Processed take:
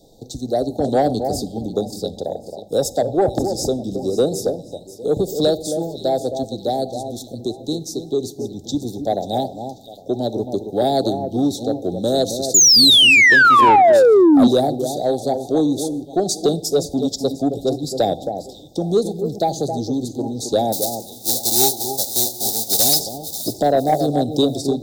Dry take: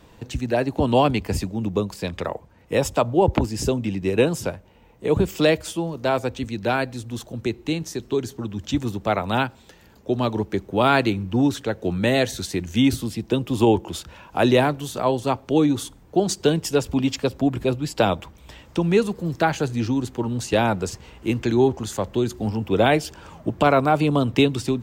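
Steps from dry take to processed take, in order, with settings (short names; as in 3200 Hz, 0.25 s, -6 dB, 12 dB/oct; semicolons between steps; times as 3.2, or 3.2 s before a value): 20.72–22.99 spectral whitening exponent 0.1; Chebyshev band-stop 790–3700 Hz, order 5; bell 68 Hz -13 dB 2.8 oct; echo with dull and thin repeats by turns 0.269 s, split 1700 Hz, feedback 50%, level -8 dB; reverb RT60 1.1 s, pre-delay 7 ms, DRR 14.5 dB; 12.54–14.48 painted sound fall 230–7200 Hz -13 dBFS; soft clip -11 dBFS, distortion -17 dB; gain +5 dB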